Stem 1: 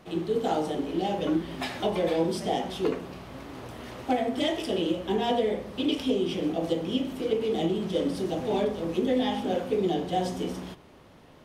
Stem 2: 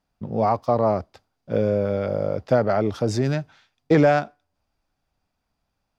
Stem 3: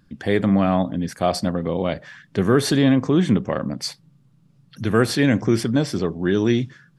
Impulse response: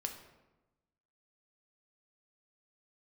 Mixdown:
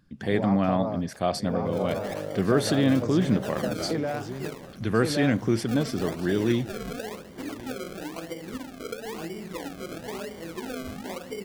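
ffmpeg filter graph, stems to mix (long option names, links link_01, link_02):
-filter_complex "[0:a]acrusher=samples=33:mix=1:aa=0.000001:lfo=1:lforange=33:lforate=1,adelay=1600,volume=-6.5dB[link_01];[1:a]volume=-7dB,asplit=3[link_02][link_03][link_04];[link_03]volume=-15.5dB[link_05];[link_04]volume=-8dB[link_06];[2:a]volume=-5.5dB,asplit=2[link_07][link_08];[link_08]volume=-20dB[link_09];[link_01][link_02]amix=inputs=2:normalize=0,acrusher=bits=10:mix=0:aa=0.000001,acompressor=threshold=-32dB:ratio=3,volume=0dB[link_10];[3:a]atrim=start_sample=2205[link_11];[link_05][link_11]afir=irnorm=-1:irlink=0[link_12];[link_06][link_09]amix=inputs=2:normalize=0,aecho=0:1:1116:1[link_13];[link_07][link_10][link_12][link_13]amix=inputs=4:normalize=0"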